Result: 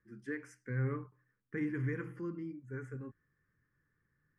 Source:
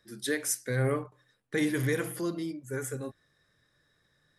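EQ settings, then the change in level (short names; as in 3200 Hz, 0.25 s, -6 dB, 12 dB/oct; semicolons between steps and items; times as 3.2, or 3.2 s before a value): tape spacing loss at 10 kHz 32 dB; fixed phaser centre 1600 Hz, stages 4; -3.5 dB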